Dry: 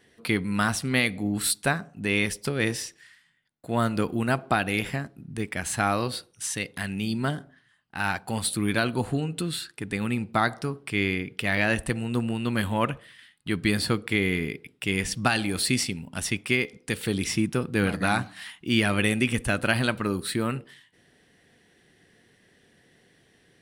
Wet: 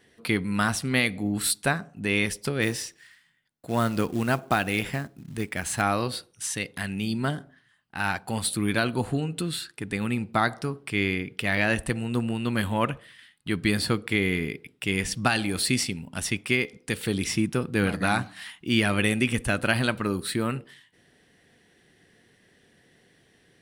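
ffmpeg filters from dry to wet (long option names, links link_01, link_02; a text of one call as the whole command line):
ffmpeg -i in.wav -filter_complex "[0:a]asettb=1/sr,asplit=3[link_01][link_02][link_03];[link_01]atrim=end=2.624[link_04];[link_02]atrim=start=2.62:end=5.82,asetpts=PTS-STARTPTS,afade=type=in:duration=0.004:curve=qsin,afade=type=out:start_time=3.196:duration=0.004:curve=qsin,acrusher=bits=5:mode=log:mix=0:aa=0.000001[link_05];[link_03]atrim=start=5.816[link_06];[link_04][link_05]acrossfade=duration=0.004:curve1=hsin:curve2=qsin[link_07];[link_07][link_06]acrossfade=duration=0.004:curve1=qsin:curve2=hsin" out.wav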